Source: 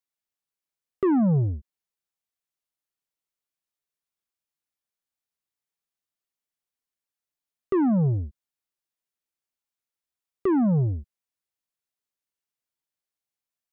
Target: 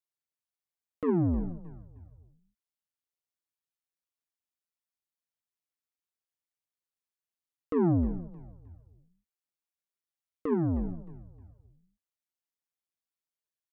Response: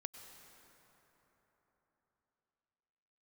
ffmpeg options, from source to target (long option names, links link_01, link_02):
-filter_complex "[0:a]asplit=4[link_01][link_02][link_03][link_04];[link_02]adelay=310,afreqshift=-64,volume=-16dB[link_05];[link_03]adelay=620,afreqshift=-128,volume=-24.6dB[link_06];[link_04]adelay=930,afreqshift=-192,volume=-33.3dB[link_07];[link_01][link_05][link_06][link_07]amix=inputs=4:normalize=0,flanger=delay=2.8:depth=3.2:regen=52:speed=1.8:shape=triangular,aeval=exprs='val(0)*sin(2*PI*84*n/s)':channel_layout=same"